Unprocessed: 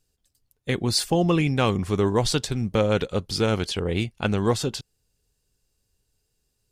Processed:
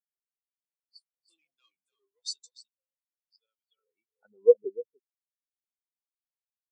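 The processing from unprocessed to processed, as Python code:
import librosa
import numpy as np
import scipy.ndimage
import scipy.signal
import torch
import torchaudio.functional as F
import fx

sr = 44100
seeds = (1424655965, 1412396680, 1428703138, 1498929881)

y = x + 10.0 ** (-6.5 / 20.0) * np.pad(x, (int(298 * sr / 1000.0), 0))[:len(x)]
y = fx.leveller(y, sr, passes=5, at=(1.28, 2.7))
y = fx.filter_sweep_bandpass(y, sr, from_hz=7600.0, to_hz=470.0, start_s=3.01, end_s=4.71, q=1.1)
y = fx.spectral_expand(y, sr, expansion=4.0)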